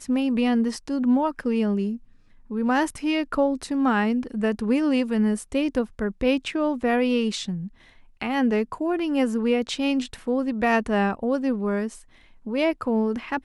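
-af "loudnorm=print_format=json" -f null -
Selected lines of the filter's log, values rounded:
"input_i" : "-24.3",
"input_tp" : "-8.7",
"input_lra" : "1.2",
"input_thresh" : "-34.7",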